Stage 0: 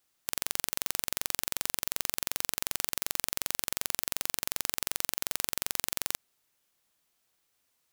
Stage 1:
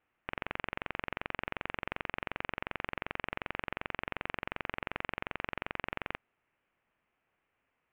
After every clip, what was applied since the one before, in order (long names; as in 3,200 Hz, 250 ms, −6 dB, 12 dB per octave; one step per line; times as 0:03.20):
Butterworth low-pass 2,700 Hz 48 dB per octave
level +3 dB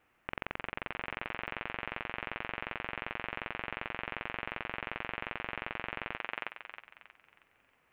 feedback echo with a high-pass in the loop 317 ms, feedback 40%, high-pass 640 Hz, level −8 dB
compressor whose output falls as the input rises −42 dBFS, ratio −0.5
level +4.5 dB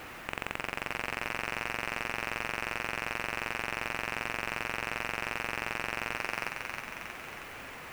power curve on the samples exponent 0.5